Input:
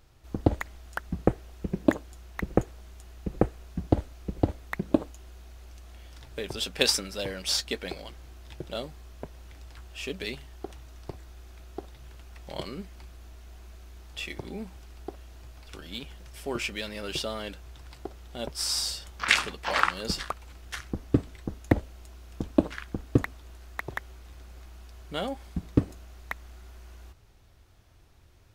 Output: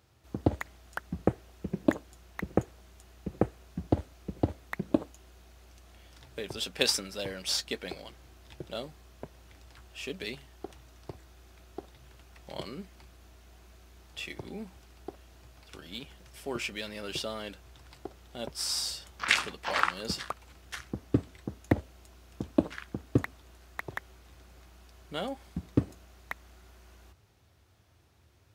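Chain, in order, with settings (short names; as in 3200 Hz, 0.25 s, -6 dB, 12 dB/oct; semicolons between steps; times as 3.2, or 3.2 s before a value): HPF 69 Hz 24 dB/oct; gain -3 dB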